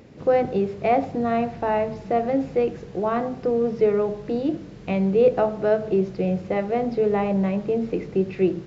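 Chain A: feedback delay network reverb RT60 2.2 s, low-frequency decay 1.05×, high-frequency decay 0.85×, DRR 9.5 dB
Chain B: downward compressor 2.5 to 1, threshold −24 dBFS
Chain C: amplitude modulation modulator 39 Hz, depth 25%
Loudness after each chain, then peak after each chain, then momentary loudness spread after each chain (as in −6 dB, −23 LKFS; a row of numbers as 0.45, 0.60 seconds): −23.0, −27.5, −25.0 LKFS; −7.5, −14.0, −8.5 dBFS; 6, 3, 5 LU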